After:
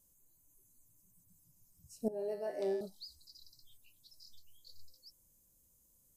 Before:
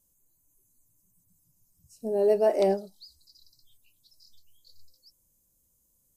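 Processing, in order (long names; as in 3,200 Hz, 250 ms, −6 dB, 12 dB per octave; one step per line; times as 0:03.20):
0:02.08–0:02.81: tuned comb filter 56 Hz, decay 0.98 s, harmonics odd, mix 90%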